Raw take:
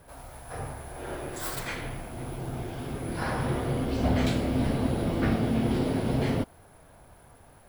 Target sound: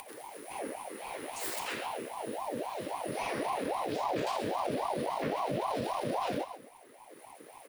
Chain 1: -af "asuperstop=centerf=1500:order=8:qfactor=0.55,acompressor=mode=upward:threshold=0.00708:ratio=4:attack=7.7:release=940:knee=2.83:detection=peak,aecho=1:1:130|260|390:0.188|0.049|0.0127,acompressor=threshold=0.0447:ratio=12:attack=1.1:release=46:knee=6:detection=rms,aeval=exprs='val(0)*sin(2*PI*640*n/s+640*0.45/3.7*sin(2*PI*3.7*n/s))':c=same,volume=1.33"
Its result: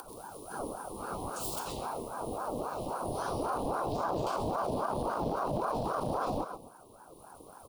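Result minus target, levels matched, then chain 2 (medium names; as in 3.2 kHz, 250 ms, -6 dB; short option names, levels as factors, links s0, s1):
2 kHz band -5.0 dB
-af "asuperstop=centerf=510:order=8:qfactor=0.55,acompressor=mode=upward:threshold=0.00708:ratio=4:attack=7.7:release=940:knee=2.83:detection=peak,aecho=1:1:130|260|390:0.188|0.049|0.0127,acompressor=threshold=0.0447:ratio=12:attack=1.1:release=46:knee=6:detection=rms,aeval=exprs='val(0)*sin(2*PI*640*n/s+640*0.45/3.7*sin(2*PI*3.7*n/s))':c=same,volume=1.33"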